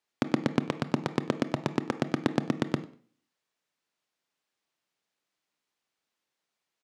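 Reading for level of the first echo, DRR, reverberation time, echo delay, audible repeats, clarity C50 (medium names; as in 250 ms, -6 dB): -21.5 dB, 11.0 dB, 0.45 s, 97 ms, 2, 14.0 dB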